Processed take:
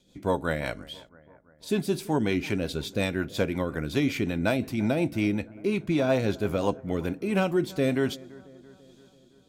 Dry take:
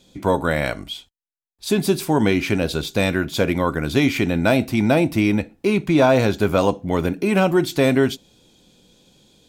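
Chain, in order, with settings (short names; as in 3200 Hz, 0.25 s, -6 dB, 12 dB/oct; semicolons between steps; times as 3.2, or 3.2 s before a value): rotary speaker horn 5.5 Hz, later 1.2 Hz, at 6.71; analogue delay 0.336 s, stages 4096, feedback 58%, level -21.5 dB; gain -6.5 dB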